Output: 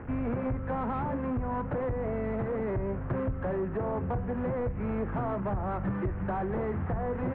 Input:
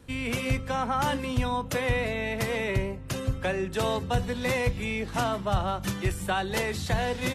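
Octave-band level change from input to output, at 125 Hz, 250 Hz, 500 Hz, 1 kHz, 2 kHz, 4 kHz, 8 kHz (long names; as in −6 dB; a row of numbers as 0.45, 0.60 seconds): −2.5 dB, 0.0 dB, −2.0 dB, −5.0 dB, −12.5 dB, below −25 dB, below −40 dB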